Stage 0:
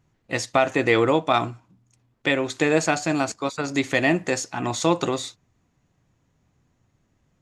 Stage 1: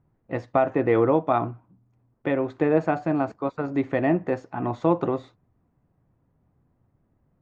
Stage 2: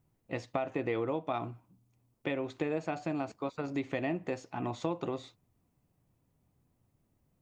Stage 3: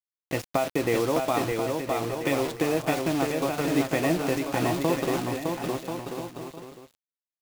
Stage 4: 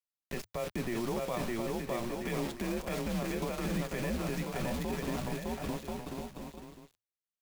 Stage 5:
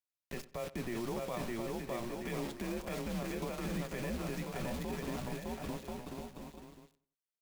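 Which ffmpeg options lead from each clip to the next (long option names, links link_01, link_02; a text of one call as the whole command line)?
ffmpeg -i in.wav -af "lowpass=1100" out.wav
ffmpeg -i in.wav -af "aexciter=amount=4.4:drive=3.5:freq=2300,acompressor=threshold=-24dB:ratio=3,volume=-6.5dB" out.wav
ffmpeg -i in.wav -af "acrusher=bits=6:mix=0:aa=0.000001,aecho=1:1:610|1037|1336|1545|1692:0.631|0.398|0.251|0.158|0.1,volume=7.5dB" out.wav
ffmpeg -i in.wav -af "alimiter=limit=-18.5dB:level=0:latency=1:release=29,afreqshift=-110,volume=-6dB" out.wav
ffmpeg -i in.wav -filter_complex "[0:a]asplit=2[link_01][link_02];[link_02]adelay=93,lowpass=frequency=2700:poles=1,volume=-17.5dB,asplit=2[link_03][link_04];[link_04]adelay=93,lowpass=frequency=2700:poles=1,volume=0.32,asplit=2[link_05][link_06];[link_06]adelay=93,lowpass=frequency=2700:poles=1,volume=0.32[link_07];[link_01][link_03][link_05][link_07]amix=inputs=4:normalize=0,volume=-4dB" out.wav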